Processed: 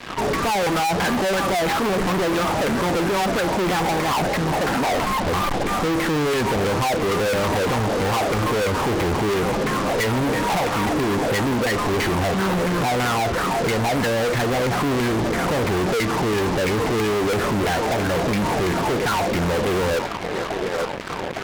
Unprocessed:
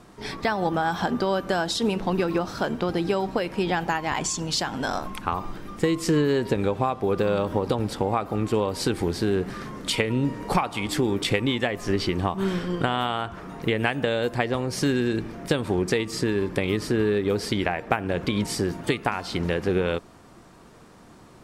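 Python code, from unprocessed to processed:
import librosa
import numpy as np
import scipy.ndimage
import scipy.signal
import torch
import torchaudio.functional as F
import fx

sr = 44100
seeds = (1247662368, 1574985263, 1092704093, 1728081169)

p1 = fx.cvsd(x, sr, bps=32000)
p2 = fx.dynamic_eq(p1, sr, hz=1700.0, q=1.1, threshold_db=-44.0, ratio=4.0, max_db=-5)
p3 = fx.filter_lfo_lowpass(p2, sr, shape='saw_down', hz=3.0, low_hz=450.0, high_hz=2200.0, q=6.0)
p4 = p3 + fx.echo_thinned(p3, sr, ms=862, feedback_pct=72, hz=260.0, wet_db=-19.5, dry=0)
p5 = fx.fuzz(p4, sr, gain_db=44.0, gate_db=-44.0)
y = p5 * librosa.db_to_amplitude(-6.5)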